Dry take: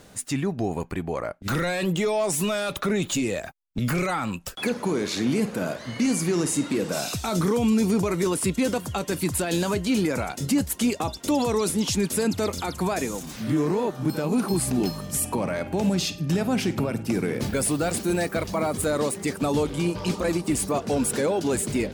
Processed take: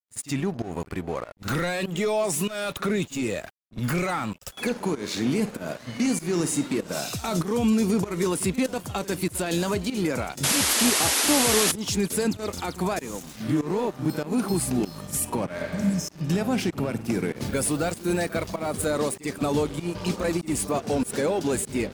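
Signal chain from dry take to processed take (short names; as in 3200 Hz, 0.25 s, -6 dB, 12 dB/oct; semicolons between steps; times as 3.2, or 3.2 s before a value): spectral repair 15.61–16.22, 280–5100 Hz both; pump 97 bpm, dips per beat 1, -15 dB, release 0.194 s; crossover distortion -42 dBFS; pre-echo 51 ms -17 dB; painted sound noise, 10.43–11.72, 230–12000 Hz -23 dBFS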